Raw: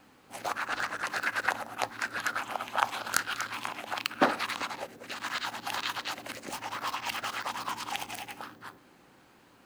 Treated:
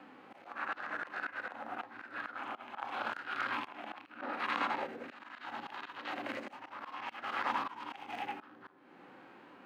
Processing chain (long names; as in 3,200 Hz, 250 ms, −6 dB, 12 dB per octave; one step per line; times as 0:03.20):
volume swells 365 ms
harmonic and percussive parts rebalanced percussive −13 dB
three-way crossover with the lows and the highs turned down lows −18 dB, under 190 Hz, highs −23 dB, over 3,100 Hz
level +9 dB